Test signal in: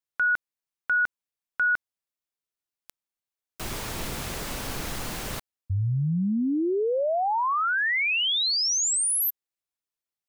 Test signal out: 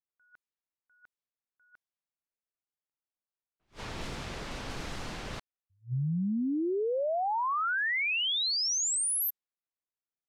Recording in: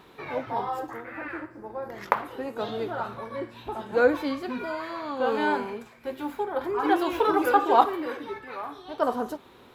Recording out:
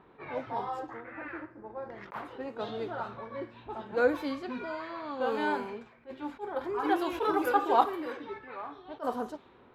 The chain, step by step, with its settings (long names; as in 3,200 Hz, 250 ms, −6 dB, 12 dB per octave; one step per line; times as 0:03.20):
low-pass that shuts in the quiet parts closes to 1,600 Hz, open at −23 dBFS
level that may rise only so fast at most 310 dB per second
level −5 dB